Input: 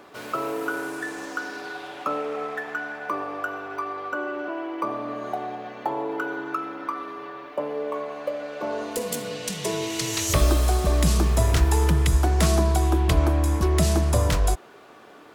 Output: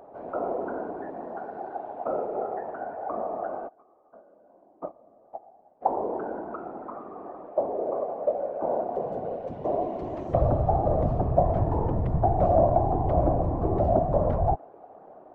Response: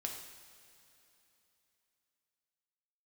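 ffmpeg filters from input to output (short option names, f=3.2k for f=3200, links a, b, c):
-filter_complex "[0:a]asplit=3[a][b][c];[a]afade=t=out:st=3.67:d=0.02[d];[b]agate=range=-26dB:threshold=-24dB:ratio=16:detection=peak,afade=t=in:st=3.67:d=0.02,afade=t=out:st=5.81:d=0.02[e];[c]afade=t=in:st=5.81:d=0.02[f];[d][e][f]amix=inputs=3:normalize=0,lowpass=f=700:t=q:w=4.9,afftfilt=real='hypot(re,im)*cos(2*PI*random(0))':imag='hypot(re,im)*sin(2*PI*random(1))':win_size=512:overlap=0.75"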